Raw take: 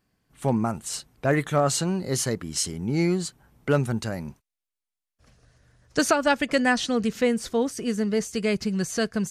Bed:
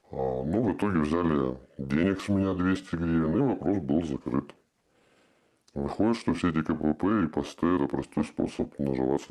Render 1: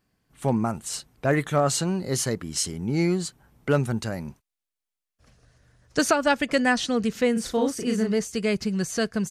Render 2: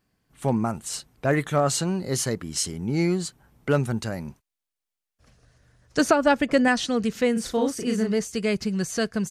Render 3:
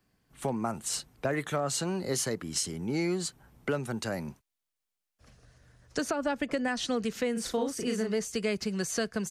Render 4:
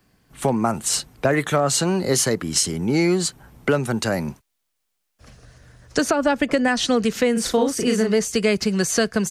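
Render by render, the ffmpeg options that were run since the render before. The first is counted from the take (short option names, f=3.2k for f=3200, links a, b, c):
-filter_complex "[0:a]asplit=3[a][b][c];[a]afade=t=out:st=7.35:d=0.02[d];[b]asplit=2[e][f];[f]adelay=36,volume=-3dB[g];[e][g]amix=inputs=2:normalize=0,afade=t=in:st=7.35:d=0.02,afade=t=out:st=8.12:d=0.02[h];[c]afade=t=in:st=8.12:d=0.02[i];[d][h][i]amix=inputs=3:normalize=0"
-filter_complex "[0:a]asettb=1/sr,asplit=3[a][b][c];[a]atrim=end=6.004[d];[b]atrim=start=6:end=6.68,asetpts=PTS-STARTPTS,afade=t=in:d=0.004:c=qsin,afade=t=out:st=0.676:d=0.004:c=qsin,tiltshelf=f=1.4k:g=4[e];[c]atrim=start=6.676[f];[d][e]acrossfade=d=0.004:c1=hsin:c2=qsin[g];[g][f]acrossfade=d=0.004:c1=qsin:c2=hsin"
-filter_complex "[0:a]alimiter=limit=-16.5dB:level=0:latency=1:release=381,acrossover=split=120|290[a][b][c];[a]acompressor=threshold=-51dB:ratio=4[d];[b]acompressor=threshold=-38dB:ratio=4[e];[c]acompressor=threshold=-27dB:ratio=4[f];[d][e][f]amix=inputs=3:normalize=0"
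-af "volume=11dB"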